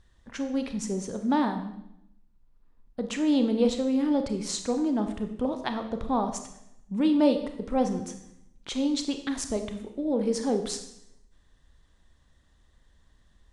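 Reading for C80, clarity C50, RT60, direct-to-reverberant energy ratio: 11.5 dB, 9.0 dB, 0.80 s, 6.5 dB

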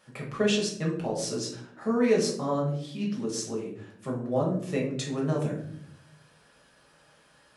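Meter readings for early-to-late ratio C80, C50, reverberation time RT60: 9.5 dB, 6.0 dB, 0.65 s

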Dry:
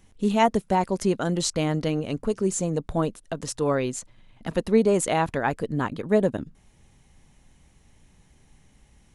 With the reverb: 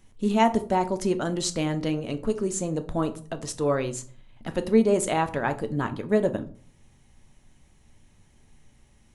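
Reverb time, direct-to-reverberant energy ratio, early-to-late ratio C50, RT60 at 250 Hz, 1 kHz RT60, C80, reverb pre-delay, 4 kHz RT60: 0.50 s, 8.0 dB, 15.5 dB, 0.60 s, 0.45 s, 20.0 dB, 3 ms, 0.30 s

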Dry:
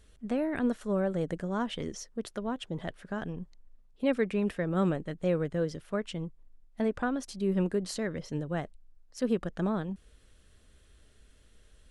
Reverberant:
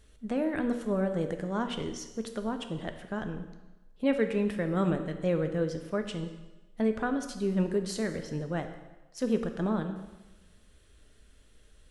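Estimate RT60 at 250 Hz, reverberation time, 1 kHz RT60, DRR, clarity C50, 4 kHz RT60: 1.1 s, 1.1 s, 1.1 s, 6.5 dB, 9.0 dB, 1.1 s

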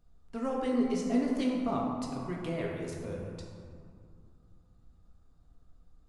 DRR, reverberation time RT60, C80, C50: −2.5 dB, 2.3 s, 2.5 dB, 1.0 dB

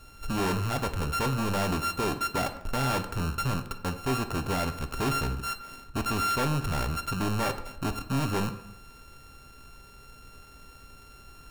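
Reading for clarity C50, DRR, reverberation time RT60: 11.5 dB, 7.5 dB, 0.85 s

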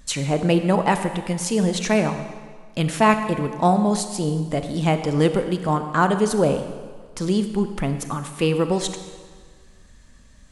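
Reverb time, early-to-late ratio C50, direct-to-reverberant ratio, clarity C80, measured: 1.7 s, 9.0 dB, 8.0 dB, 10.0 dB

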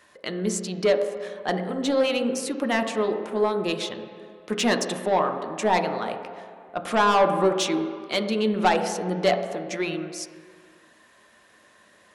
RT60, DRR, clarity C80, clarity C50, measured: non-exponential decay, 5.0 dB, 9.0 dB, 8.0 dB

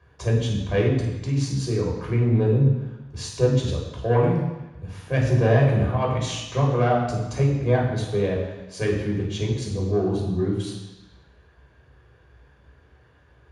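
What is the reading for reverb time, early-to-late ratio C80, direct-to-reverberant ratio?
1.1 s, 5.0 dB, −2.0 dB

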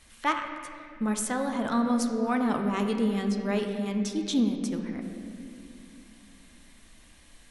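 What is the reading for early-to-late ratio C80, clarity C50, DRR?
6.5 dB, 5.5 dB, 4.0 dB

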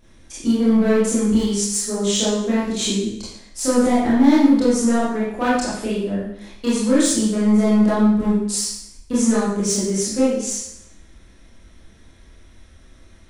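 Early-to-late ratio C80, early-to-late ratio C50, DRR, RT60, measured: 4.0 dB, 0.0 dB, −9.0 dB, 0.75 s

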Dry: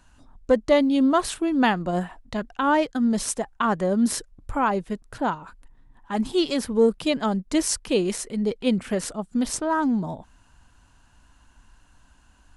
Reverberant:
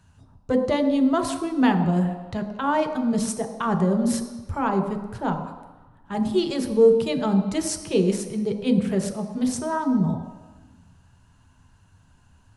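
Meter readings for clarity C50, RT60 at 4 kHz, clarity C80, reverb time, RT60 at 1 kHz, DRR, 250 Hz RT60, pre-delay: 8.0 dB, 1.2 s, 9.5 dB, 1.2 s, 1.3 s, 4.0 dB, 1.3 s, 3 ms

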